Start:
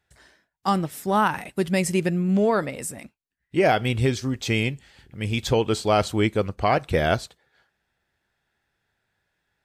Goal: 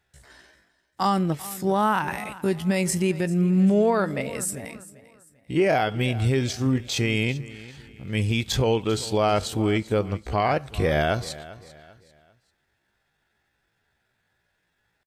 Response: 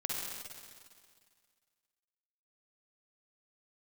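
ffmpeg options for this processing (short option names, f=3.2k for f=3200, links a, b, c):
-af "alimiter=limit=-15.5dB:level=0:latency=1:release=109,atempo=0.64,aecho=1:1:394|788|1182:0.126|0.0441|0.0154,volume=3dB"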